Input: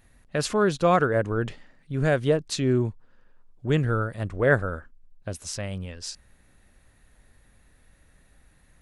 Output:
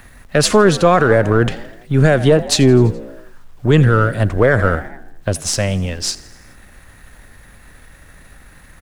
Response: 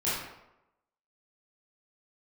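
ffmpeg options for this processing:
-filter_complex "[0:a]aeval=exprs='if(lt(val(0),0),0.708*val(0),val(0))':c=same,acrossover=split=230|1300|1600[a][b][c][d];[c]acompressor=mode=upward:threshold=-60dB:ratio=2.5[e];[a][b][e][d]amix=inputs=4:normalize=0,acrusher=bits=11:mix=0:aa=0.000001,asplit=6[f][g][h][i][j][k];[g]adelay=84,afreqshift=52,volume=-21dB[l];[h]adelay=168,afreqshift=104,volume=-25dB[m];[i]adelay=252,afreqshift=156,volume=-29dB[n];[j]adelay=336,afreqshift=208,volume=-33dB[o];[k]adelay=420,afreqshift=260,volume=-37.1dB[p];[f][l][m][n][o][p]amix=inputs=6:normalize=0,alimiter=level_in=17dB:limit=-1dB:release=50:level=0:latency=1,volume=-1dB"

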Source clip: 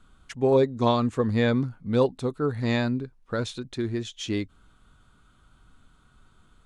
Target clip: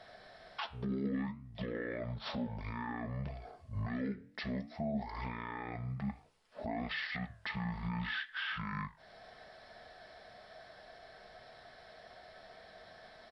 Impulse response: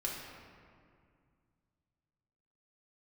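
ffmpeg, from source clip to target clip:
-af "highpass=f=1.4k:p=1,aecho=1:1:2.3:0.31,acompressor=threshold=-42dB:ratio=10,alimiter=level_in=18dB:limit=-24dB:level=0:latency=1:release=21,volume=-18dB,flanger=delay=4.9:depth=7.7:regen=-77:speed=1.2:shape=triangular,asetrate=22050,aresample=44100,volume=17.5dB"

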